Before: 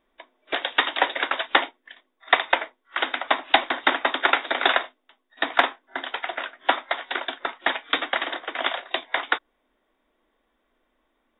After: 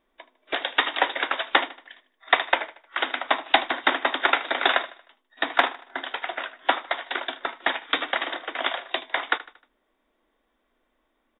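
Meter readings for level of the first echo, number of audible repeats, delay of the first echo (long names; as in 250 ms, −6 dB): −18.0 dB, 3, 77 ms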